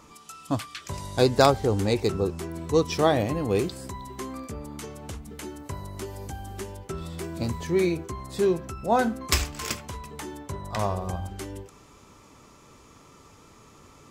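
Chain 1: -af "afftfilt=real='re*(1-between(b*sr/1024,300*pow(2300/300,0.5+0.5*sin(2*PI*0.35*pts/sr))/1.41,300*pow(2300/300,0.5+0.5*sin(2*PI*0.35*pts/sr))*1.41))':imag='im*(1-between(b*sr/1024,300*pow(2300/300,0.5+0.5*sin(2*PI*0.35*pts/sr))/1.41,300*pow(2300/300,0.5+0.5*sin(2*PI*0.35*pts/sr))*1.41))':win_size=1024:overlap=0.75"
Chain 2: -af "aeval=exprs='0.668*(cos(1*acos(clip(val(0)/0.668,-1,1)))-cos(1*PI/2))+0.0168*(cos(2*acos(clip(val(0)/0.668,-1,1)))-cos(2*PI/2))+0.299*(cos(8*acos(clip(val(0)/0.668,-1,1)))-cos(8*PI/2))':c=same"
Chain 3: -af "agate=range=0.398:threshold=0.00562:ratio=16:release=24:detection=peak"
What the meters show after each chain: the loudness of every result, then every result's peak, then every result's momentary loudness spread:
-29.0 LUFS, -21.5 LUFS, -27.5 LUFS; -5.5 dBFS, -1.5 dBFS, -3.5 dBFS; 17 LU, 20 LU, 16 LU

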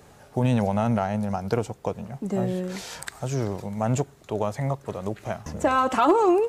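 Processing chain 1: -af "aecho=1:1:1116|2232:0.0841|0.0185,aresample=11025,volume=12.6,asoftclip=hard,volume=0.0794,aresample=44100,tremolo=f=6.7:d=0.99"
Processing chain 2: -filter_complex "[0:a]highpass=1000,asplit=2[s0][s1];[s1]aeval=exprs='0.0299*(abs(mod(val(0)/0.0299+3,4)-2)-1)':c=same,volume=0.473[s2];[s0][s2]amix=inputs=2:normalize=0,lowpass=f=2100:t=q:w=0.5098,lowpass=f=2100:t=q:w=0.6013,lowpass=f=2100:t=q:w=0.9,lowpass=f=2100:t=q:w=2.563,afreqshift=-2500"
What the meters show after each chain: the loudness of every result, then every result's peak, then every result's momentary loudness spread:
-33.5 LUFS, -32.0 LUFS; -20.5 dBFS, -14.0 dBFS; 12 LU, 16 LU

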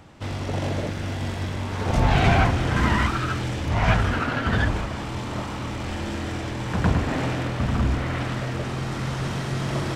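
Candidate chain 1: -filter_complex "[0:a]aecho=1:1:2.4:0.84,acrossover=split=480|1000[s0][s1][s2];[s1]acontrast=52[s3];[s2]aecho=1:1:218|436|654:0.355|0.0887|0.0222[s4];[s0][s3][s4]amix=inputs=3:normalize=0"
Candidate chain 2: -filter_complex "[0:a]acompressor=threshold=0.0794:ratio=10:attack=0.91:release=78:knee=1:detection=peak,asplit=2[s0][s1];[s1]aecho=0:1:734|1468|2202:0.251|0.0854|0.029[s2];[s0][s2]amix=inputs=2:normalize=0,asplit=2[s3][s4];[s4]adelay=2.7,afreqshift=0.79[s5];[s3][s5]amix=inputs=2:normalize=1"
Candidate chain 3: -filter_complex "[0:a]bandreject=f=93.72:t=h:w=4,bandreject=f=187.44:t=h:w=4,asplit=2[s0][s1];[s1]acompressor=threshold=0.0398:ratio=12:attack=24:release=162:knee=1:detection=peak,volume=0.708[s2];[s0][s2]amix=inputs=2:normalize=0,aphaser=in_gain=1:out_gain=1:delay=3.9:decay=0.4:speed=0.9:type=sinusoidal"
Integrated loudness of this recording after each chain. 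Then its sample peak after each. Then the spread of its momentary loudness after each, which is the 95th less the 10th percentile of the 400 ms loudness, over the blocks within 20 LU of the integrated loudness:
-21.5 LUFS, -31.5 LUFS, -21.0 LUFS; -2.5 dBFS, -17.5 dBFS, -2.5 dBFS; 10 LU, 4 LU, 8 LU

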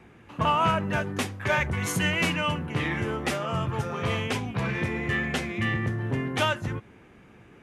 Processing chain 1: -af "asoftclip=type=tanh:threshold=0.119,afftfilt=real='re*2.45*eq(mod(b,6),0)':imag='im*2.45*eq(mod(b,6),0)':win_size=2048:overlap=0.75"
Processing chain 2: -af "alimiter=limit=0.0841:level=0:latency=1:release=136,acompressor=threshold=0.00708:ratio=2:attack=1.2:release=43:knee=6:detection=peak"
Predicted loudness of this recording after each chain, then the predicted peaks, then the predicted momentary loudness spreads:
-30.5 LUFS, -40.0 LUFS; -15.5 dBFS, -28.5 dBFS; 7 LU, 6 LU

